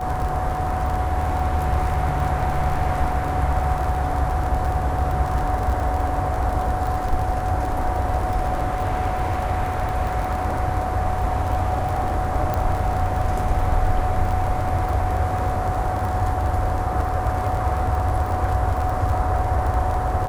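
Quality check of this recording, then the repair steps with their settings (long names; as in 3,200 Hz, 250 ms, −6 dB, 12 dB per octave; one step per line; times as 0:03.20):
surface crackle 34 per second −26 dBFS
whistle 740 Hz −26 dBFS
0:12.54: click −12 dBFS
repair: click removal
notch filter 740 Hz, Q 30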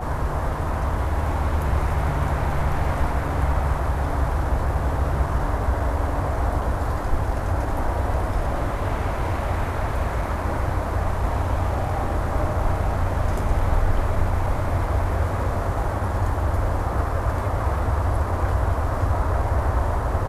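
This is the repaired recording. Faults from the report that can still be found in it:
none of them is left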